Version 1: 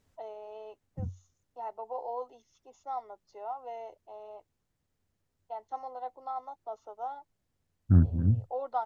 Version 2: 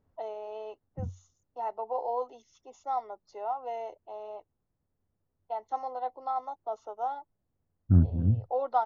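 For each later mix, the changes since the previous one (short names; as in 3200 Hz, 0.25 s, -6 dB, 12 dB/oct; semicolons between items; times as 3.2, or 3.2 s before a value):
first voice +5.0 dB; second voice: add LPF 1100 Hz 12 dB/oct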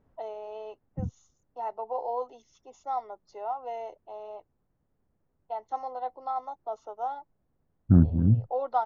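second voice +6.5 dB; master: add bell 92 Hz -10 dB 0.22 oct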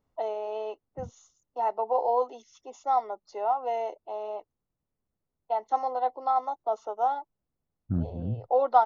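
first voice +6.5 dB; second voice -10.5 dB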